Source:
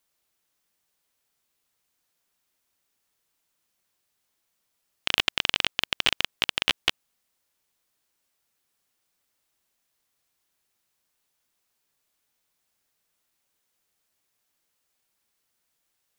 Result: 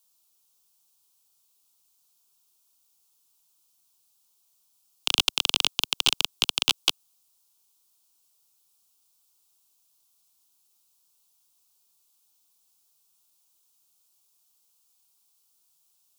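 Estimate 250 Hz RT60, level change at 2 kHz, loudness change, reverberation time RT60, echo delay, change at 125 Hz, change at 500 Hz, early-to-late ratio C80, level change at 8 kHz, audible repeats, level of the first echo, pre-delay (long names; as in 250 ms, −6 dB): no reverb audible, −3.5 dB, +1.5 dB, no reverb audible, no echo audible, −3.5 dB, −4.5 dB, no reverb audible, +8.5 dB, no echo audible, no echo audible, no reverb audible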